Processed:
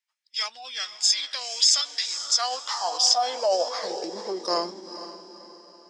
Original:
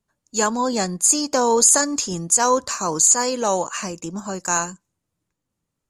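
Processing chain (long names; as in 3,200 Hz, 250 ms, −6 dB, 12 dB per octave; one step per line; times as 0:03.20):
feedback delay with all-pass diffusion 470 ms, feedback 44%, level −12 dB
high-pass filter sweep 2,600 Hz → 330 Hz, 0:01.91–0:04.82
formants moved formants −5 semitones
level −5 dB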